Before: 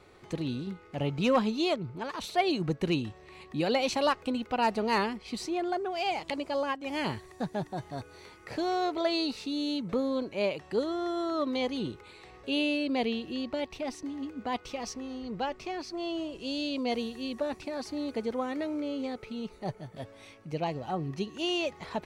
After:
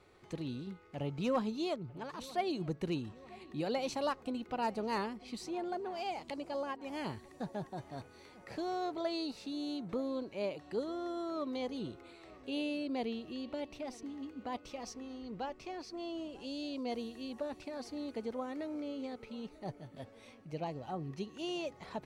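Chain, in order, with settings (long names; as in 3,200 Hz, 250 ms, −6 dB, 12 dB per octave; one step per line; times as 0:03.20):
dynamic equaliser 2,600 Hz, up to −5 dB, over −44 dBFS, Q 0.86
on a send: feedback echo with a low-pass in the loop 944 ms, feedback 60%, low-pass 2,600 Hz, level −20 dB
on the sum: level −7 dB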